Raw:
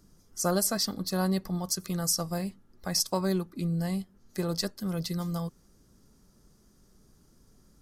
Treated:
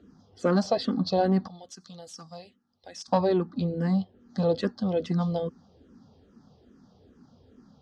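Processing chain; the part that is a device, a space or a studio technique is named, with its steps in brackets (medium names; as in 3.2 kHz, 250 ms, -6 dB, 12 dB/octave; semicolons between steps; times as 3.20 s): barber-pole phaser into a guitar amplifier (barber-pole phaser -2.4 Hz; saturation -24 dBFS, distortion -19 dB; cabinet simulation 83–4300 Hz, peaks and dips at 86 Hz +8 dB, 250 Hz +10 dB, 490 Hz +7 dB, 760 Hz +8 dB, 2.2 kHz -7 dB, 3.3 kHz +3 dB); 1.48–3.08 s: pre-emphasis filter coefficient 0.9; trim +6.5 dB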